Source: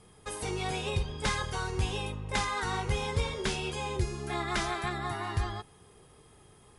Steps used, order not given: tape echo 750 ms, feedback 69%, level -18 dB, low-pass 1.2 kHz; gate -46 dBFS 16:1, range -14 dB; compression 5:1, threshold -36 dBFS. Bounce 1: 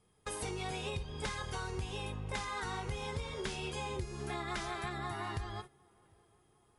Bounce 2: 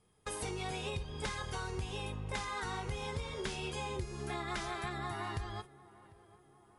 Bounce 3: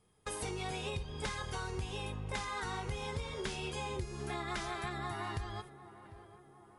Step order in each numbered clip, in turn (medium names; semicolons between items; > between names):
tape echo > compression > gate; compression > gate > tape echo; gate > tape echo > compression